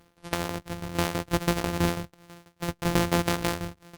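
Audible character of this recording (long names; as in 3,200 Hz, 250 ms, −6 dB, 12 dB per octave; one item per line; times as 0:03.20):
a buzz of ramps at a fixed pitch in blocks of 256 samples
tremolo saw down 6.1 Hz, depth 80%
Opus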